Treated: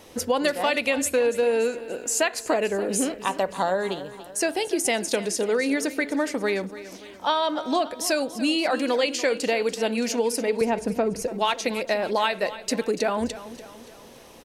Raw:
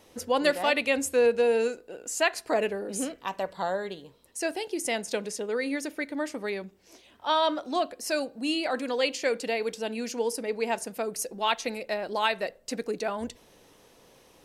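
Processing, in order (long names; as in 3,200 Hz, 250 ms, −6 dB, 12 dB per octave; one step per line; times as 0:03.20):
0:10.61–0:11.28: RIAA equalisation playback
downward compressor, threshold −28 dBFS, peak gain reduction 10.5 dB
repeating echo 288 ms, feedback 50%, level −15 dB
level +8.5 dB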